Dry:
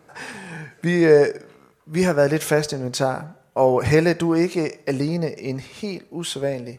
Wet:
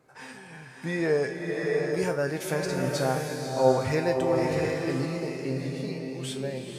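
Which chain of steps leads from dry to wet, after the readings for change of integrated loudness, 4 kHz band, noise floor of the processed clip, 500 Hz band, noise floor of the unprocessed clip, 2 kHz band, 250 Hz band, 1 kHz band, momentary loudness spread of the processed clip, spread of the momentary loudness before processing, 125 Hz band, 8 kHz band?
-7.0 dB, -6.5 dB, -47 dBFS, -6.5 dB, -56 dBFS, -6.0 dB, -8.0 dB, -4.5 dB, 10 LU, 16 LU, -6.0 dB, -6.5 dB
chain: feedback comb 130 Hz, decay 0.36 s, harmonics all, mix 80%; swelling reverb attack 750 ms, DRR 0.5 dB

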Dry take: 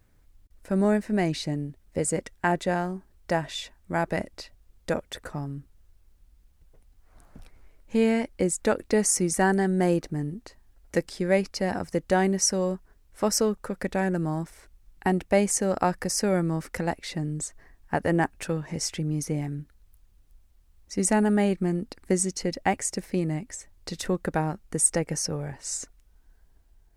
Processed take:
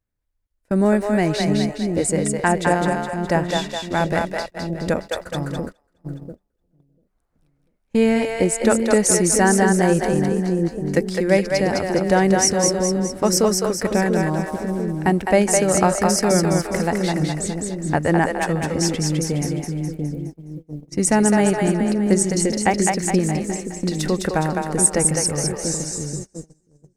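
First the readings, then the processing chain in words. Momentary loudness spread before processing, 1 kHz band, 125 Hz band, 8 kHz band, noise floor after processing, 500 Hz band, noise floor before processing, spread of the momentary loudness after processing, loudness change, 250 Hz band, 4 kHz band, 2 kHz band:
12 LU, +7.5 dB, +7.5 dB, +8.0 dB, -68 dBFS, +7.5 dB, -61 dBFS, 11 LU, +7.0 dB, +7.5 dB, +8.0 dB, +8.0 dB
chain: two-band feedback delay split 430 Hz, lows 692 ms, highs 208 ms, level -3 dB; gate -35 dBFS, range -25 dB; trim +5.5 dB

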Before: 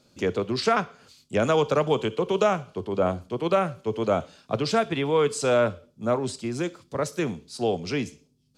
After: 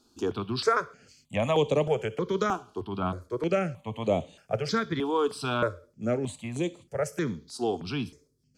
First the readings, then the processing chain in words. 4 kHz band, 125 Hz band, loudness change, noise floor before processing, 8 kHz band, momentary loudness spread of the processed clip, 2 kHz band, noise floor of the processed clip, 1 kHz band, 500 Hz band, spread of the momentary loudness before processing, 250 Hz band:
-3.5 dB, -2.0 dB, -4.0 dB, -65 dBFS, -6.0 dB, 8 LU, -3.0 dB, -68 dBFS, -3.5 dB, -4.5 dB, 9 LU, -2.5 dB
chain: stepped phaser 3.2 Hz 560–5100 Hz

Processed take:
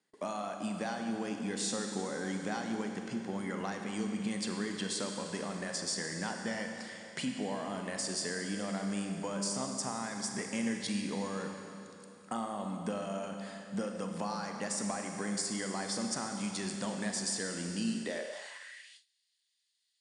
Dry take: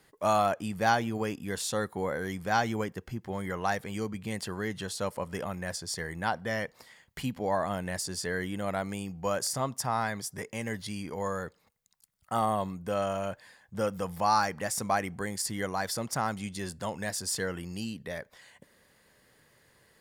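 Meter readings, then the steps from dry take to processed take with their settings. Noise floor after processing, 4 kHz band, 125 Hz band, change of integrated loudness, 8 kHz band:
-79 dBFS, -0.5 dB, -5.5 dB, -4.5 dB, -0.5 dB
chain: compression 16:1, threshold -37 dBFS, peak gain reduction 18 dB; Schroeder reverb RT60 2.9 s, combs from 31 ms, DRR 3 dB; high-pass sweep 220 Hz -> 3.7 kHz, 17.99–19.00 s; treble shelf 2.4 kHz +6.5 dB; gate with hold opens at -45 dBFS; steep low-pass 9.4 kHz 72 dB/octave

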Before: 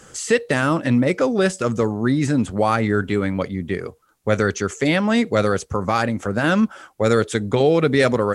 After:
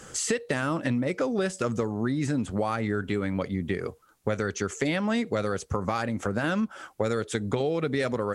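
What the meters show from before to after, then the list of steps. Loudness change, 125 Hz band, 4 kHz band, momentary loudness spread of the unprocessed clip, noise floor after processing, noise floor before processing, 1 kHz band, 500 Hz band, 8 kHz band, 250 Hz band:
-8.5 dB, -8.0 dB, -8.0 dB, 6 LU, -57 dBFS, -56 dBFS, -9.0 dB, -9.0 dB, -3.5 dB, -8.5 dB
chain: compression 6:1, threshold -24 dBFS, peak gain reduction 12 dB

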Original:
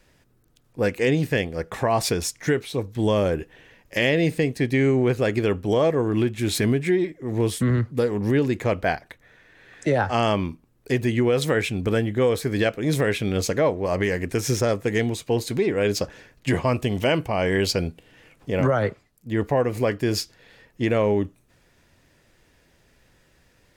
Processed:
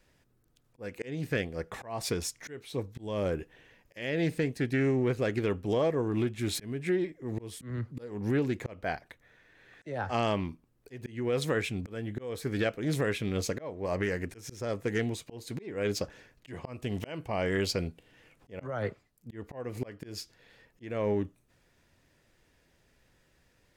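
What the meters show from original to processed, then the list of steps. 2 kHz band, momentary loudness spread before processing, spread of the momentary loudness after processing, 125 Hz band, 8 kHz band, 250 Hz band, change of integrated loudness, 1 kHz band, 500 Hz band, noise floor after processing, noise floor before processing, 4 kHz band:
-9.5 dB, 7 LU, 13 LU, -10.0 dB, -9.5 dB, -9.5 dB, -9.5 dB, -10.5 dB, -10.0 dB, -69 dBFS, -61 dBFS, -9.5 dB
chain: slow attack 295 ms; loudspeaker Doppler distortion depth 0.12 ms; trim -7.5 dB

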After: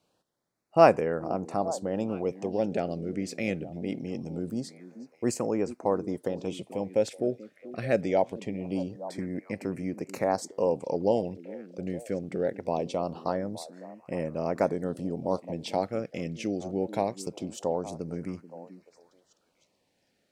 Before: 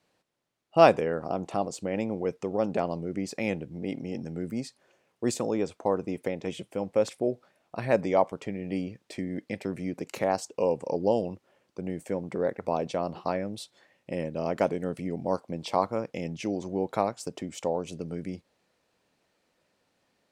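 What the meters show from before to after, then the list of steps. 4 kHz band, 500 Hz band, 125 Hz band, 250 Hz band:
-2.0 dB, 0.0 dB, 0.0 dB, 0.0 dB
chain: repeats whose band climbs or falls 434 ms, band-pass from 260 Hz, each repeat 1.4 oct, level -11.5 dB; LFO notch sine 0.23 Hz 900–3600 Hz

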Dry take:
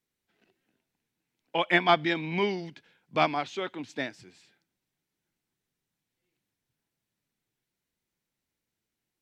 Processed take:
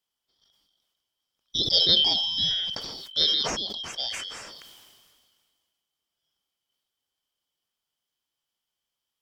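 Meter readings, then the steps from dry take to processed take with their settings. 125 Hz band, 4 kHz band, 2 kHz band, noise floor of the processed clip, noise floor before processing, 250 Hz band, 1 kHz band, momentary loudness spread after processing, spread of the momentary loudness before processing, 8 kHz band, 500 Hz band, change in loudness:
-4.5 dB, +16.0 dB, -11.5 dB, under -85 dBFS, under -85 dBFS, -8.5 dB, -12.0 dB, 16 LU, 13 LU, no reading, -8.5 dB, +5.0 dB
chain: four frequency bands reordered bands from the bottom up 3412; decay stretcher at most 30 dB/s

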